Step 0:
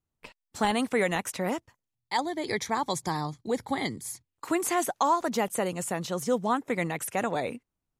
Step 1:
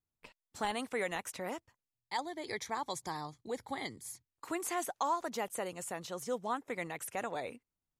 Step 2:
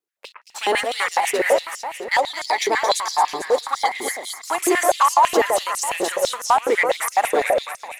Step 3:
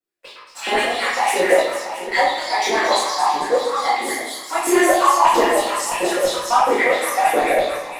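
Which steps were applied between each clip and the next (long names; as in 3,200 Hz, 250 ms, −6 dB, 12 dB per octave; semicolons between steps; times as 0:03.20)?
dynamic equaliser 180 Hz, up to −7 dB, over −43 dBFS, Q 0.87; level −8 dB
leveller curve on the samples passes 2; delay that swaps between a low-pass and a high-pass 112 ms, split 2,000 Hz, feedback 77%, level −3 dB; high-pass on a step sequencer 12 Hz 390–5,400 Hz; level +7.5 dB
convolution reverb RT60 0.90 s, pre-delay 3 ms, DRR −10.5 dB; level −14.5 dB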